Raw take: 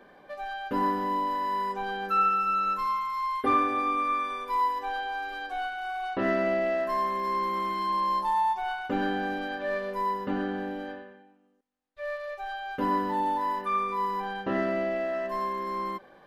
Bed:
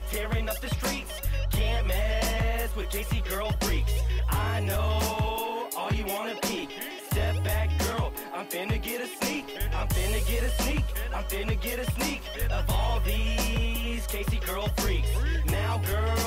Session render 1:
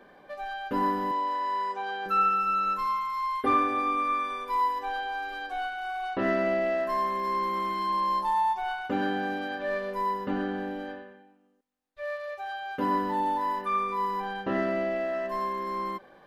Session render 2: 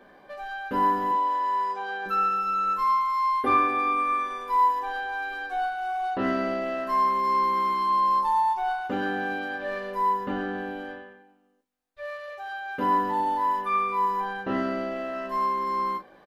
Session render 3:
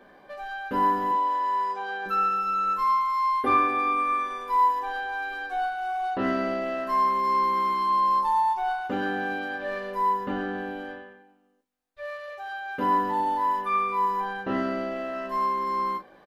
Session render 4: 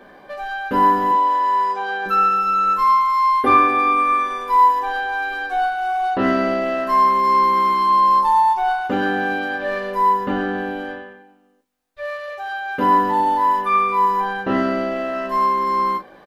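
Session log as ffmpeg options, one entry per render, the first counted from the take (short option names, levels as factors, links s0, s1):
-filter_complex "[0:a]asettb=1/sr,asplit=3[s0][s1][s2];[s0]atrim=end=1.114[s3];[s1]atrim=start=1.11:end=2.06,asetpts=PTS-STARTPTS,afade=t=in:d=0.004:c=qsin,afade=t=out:st=0.946:d=0.004:c=qsin,highpass=410,lowpass=7700[s4];[s2]atrim=start=2.056[s5];[s3][s4]acrossfade=d=0.004:c1=hsin:c2=qsin[s6];[s6][s5]acrossfade=d=0.004:c1=qsin:c2=hsin,asettb=1/sr,asplit=3[s7][s8][s9];[s7]atrim=end=8.874[s10];[s8]atrim=start=8.87:end=9.6,asetpts=PTS-STARTPTS,afade=t=in:d=0.004:c=qsin,afade=t=out:st=0.726:d=0.004:c=qsin,highpass=63[s11];[s9]atrim=start=9.596[s12];[s10][s11]acrossfade=d=0.004:c1=hsin:c2=qsin[s13];[s13][s12]acrossfade=d=0.004:c1=qsin:c2=hsin,asettb=1/sr,asplit=3[s14][s15][s16];[s14]atrim=end=12.034[s17];[s15]atrim=start=12.03:end=12.95,asetpts=PTS-STARTPTS,afade=t=in:d=0.004:c=qsin,afade=t=out:st=0.916:d=0.004:c=qsin,highpass=76[s18];[s16]atrim=start=12.946[s19];[s17][s18]acrossfade=d=0.004:c1=hsin:c2=qsin[s20];[s20][s19]acrossfade=d=0.004:c1=qsin:c2=hsin"
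-filter_complex "[0:a]asplit=2[s0][s1];[s1]adelay=16,volume=0.398[s2];[s0][s2]amix=inputs=2:normalize=0,aecho=1:1:19|38:0.282|0.316"
-af anull
-af "volume=2.51"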